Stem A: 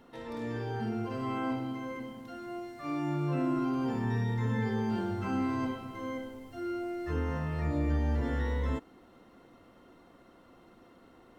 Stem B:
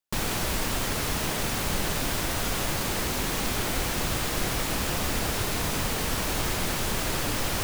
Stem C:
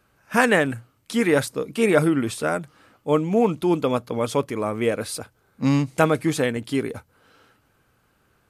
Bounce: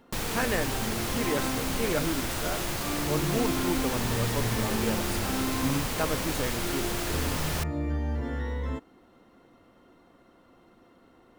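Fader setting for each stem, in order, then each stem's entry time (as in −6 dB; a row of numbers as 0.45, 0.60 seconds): −0.5, −3.5, −11.5 decibels; 0.00, 0.00, 0.00 seconds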